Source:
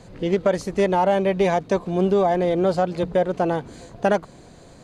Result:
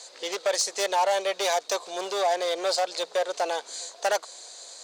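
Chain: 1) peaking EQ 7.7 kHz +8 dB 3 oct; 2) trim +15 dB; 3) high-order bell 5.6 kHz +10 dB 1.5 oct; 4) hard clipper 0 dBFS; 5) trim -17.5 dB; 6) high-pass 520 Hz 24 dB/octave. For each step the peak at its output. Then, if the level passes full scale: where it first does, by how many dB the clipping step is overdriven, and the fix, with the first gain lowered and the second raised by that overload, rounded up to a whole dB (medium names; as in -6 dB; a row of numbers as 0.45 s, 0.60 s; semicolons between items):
-6.5 dBFS, +8.5 dBFS, +9.0 dBFS, 0.0 dBFS, -17.5 dBFS, -13.0 dBFS; step 2, 9.0 dB; step 2 +6 dB, step 5 -8.5 dB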